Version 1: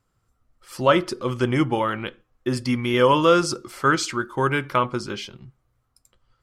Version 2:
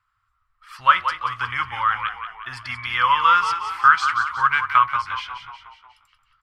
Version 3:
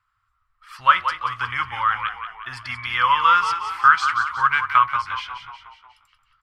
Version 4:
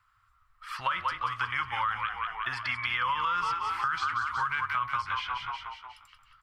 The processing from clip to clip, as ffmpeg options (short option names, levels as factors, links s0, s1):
-filter_complex "[0:a]firequalizer=gain_entry='entry(100,0);entry(150,-15);entry(340,-26);entry(1100,15);entry(6600,-5)':delay=0.05:min_phase=1,asplit=2[s0][s1];[s1]asplit=6[s2][s3][s4][s5][s6][s7];[s2]adelay=181,afreqshift=-38,volume=0.355[s8];[s3]adelay=362,afreqshift=-76,volume=0.188[s9];[s4]adelay=543,afreqshift=-114,volume=0.1[s10];[s5]adelay=724,afreqshift=-152,volume=0.0531[s11];[s6]adelay=905,afreqshift=-190,volume=0.0279[s12];[s7]adelay=1086,afreqshift=-228,volume=0.0148[s13];[s8][s9][s10][s11][s12][s13]amix=inputs=6:normalize=0[s14];[s0][s14]amix=inputs=2:normalize=0,volume=0.447"
-af anull
-filter_complex "[0:a]alimiter=limit=0.224:level=0:latency=1:release=36,acrossover=split=340|4100[s0][s1][s2];[s0]acompressor=threshold=0.00224:ratio=4[s3];[s1]acompressor=threshold=0.0224:ratio=4[s4];[s2]acompressor=threshold=0.00141:ratio=4[s5];[s3][s4][s5]amix=inputs=3:normalize=0,volume=1.58"